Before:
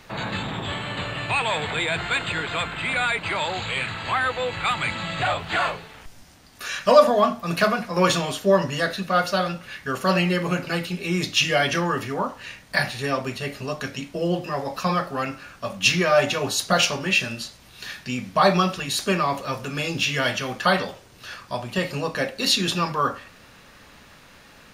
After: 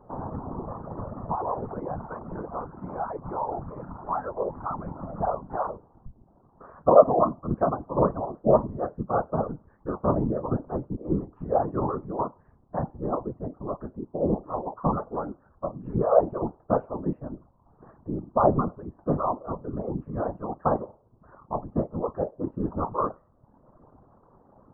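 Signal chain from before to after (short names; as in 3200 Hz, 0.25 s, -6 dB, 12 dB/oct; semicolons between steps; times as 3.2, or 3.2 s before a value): reverb removal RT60 0.88 s; steep low-pass 1100 Hz 48 dB/oct; whisperiser; gain -1 dB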